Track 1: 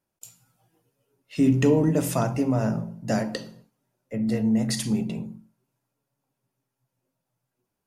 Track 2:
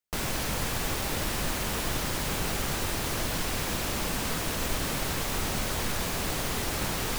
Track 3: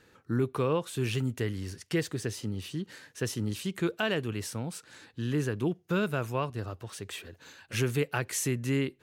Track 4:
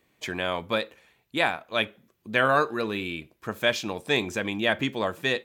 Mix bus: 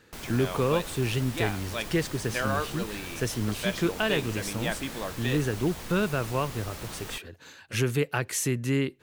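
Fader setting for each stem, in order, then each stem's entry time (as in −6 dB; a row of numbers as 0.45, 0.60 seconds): muted, −10.0 dB, +2.5 dB, −8.0 dB; muted, 0.00 s, 0.00 s, 0.00 s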